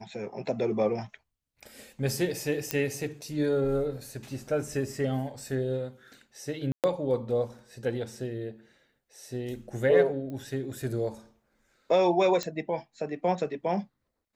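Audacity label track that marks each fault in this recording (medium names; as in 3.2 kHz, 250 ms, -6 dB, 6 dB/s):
2.710000	2.710000	pop -10 dBFS
6.720000	6.840000	dropout 118 ms
10.300000	10.300000	pop -29 dBFS
12.430000	12.430000	pop -16 dBFS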